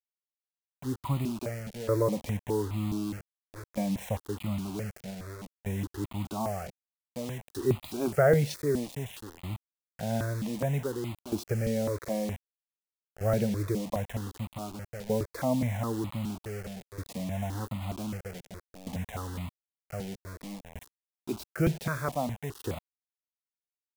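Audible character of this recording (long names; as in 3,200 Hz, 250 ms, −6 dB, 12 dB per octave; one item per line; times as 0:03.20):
tremolo saw down 0.53 Hz, depth 85%
a quantiser's noise floor 8 bits, dither none
notches that jump at a steady rate 4.8 Hz 310–1,600 Hz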